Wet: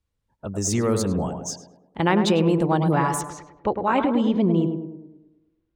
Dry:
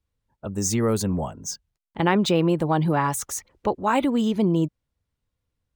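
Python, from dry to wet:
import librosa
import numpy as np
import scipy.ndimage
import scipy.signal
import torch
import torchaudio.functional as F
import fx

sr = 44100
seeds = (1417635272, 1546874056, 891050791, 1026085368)

y = fx.lowpass(x, sr, hz=fx.steps((0.0, 12000.0), (3.21, 3300.0)), slope=12)
y = fx.echo_tape(y, sr, ms=104, feedback_pct=60, wet_db=-4.0, lp_hz=1100.0, drive_db=7.0, wow_cents=26)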